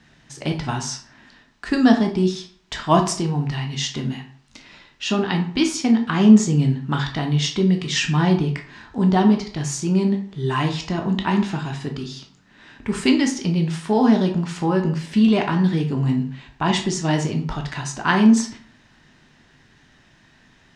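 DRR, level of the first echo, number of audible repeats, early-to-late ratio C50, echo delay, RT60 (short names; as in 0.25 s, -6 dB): 3.0 dB, none, none, 9.5 dB, none, 0.50 s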